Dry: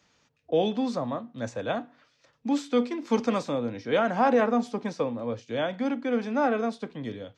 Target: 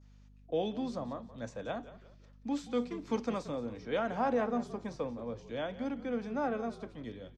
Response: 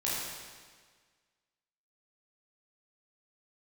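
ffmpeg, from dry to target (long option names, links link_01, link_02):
-filter_complex "[0:a]adynamicequalizer=threshold=0.00562:dfrequency=2600:dqfactor=0.81:tfrequency=2600:tqfactor=0.81:attack=5:release=100:ratio=0.375:range=2.5:mode=cutabove:tftype=bell,aeval=exprs='val(0)+0.00398*(sin(2*PI*50*n/s)+sin(2*PI*2*50*n/s)/2+sin(2*PI*3*50*n/s)/3+sin(2*PI*4*50*n/s)/4+sin(2*PI*5*50*n/s)/5)':channel_layout=same,asplit=4[link_01][link_02][link_03][link_04];[link_02]adelay=177,afreqshift=-51,volume=-15dB[link_05];[link_03]adelay=354,afreqshift=-102,volume=-24.1dB[link_06];[link_04]adelay=531,afreqshift=-153,volume=-33.2dB[link_07];[link_01][link_05][link_06][link_07]amix=inputs=4:normalize=0,volume=-8.5dB"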